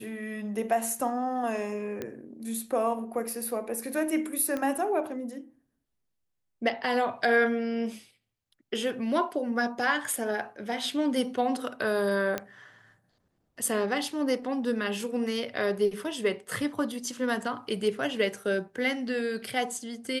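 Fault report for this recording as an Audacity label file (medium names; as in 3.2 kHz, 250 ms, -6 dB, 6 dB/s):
2.020000	2.020000	pop -20 dBFS
4.570000	4.570000	pop -19 dBFS
12.380000	12.380000	pop -15 dBFS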